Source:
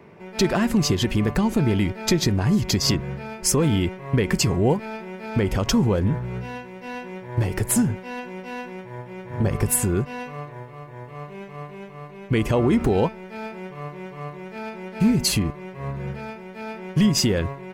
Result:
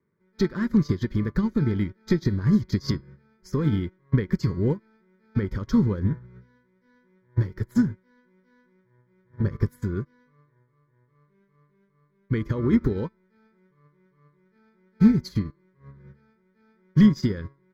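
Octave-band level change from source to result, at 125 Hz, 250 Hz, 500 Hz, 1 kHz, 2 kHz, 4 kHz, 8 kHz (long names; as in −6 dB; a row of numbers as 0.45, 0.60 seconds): −2.0 dB, −1.0 dB, −7.5 dB, −13.0 dB, −9.0 dB, −15.5 dB, below −20 dB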